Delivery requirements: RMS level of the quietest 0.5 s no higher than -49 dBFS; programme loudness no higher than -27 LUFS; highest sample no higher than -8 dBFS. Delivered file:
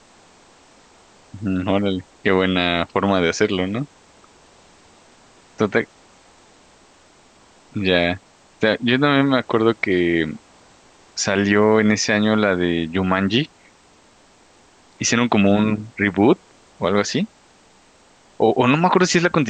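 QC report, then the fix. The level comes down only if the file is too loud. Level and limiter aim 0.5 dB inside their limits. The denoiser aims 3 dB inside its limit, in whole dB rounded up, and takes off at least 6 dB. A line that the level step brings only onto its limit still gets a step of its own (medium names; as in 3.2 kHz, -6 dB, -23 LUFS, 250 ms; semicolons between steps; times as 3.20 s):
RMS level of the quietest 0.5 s -53 dBFS: pass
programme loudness -19.0 LUFS: fail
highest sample -3.5 dBFS: fail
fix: trim -8.5 dB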